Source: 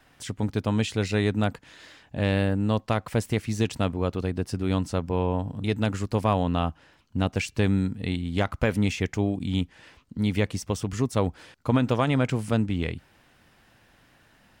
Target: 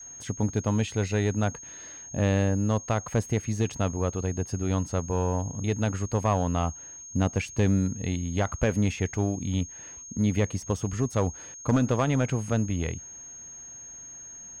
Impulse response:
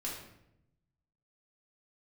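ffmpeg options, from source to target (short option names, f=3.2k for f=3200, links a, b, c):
-af "highshelf=f=2.2k:g=-10.5,aeval=exprs='val(0)+0.00708*sin(2*PI*6500*n/s)':c=same,asoftclip=type=tanh:threshold=-13.5dB,adynamicequalizer=threshold=0.0141:dfrequency=250:dqfactor=0.79:tfrequency=250:tqfactor=0.79:attack=5:release=100:ratio=0.375:range=2.5:mode=cutabove:tftype=bell,volume=18dB,asoftclip=hard,volume=-18dB,volume=2dB"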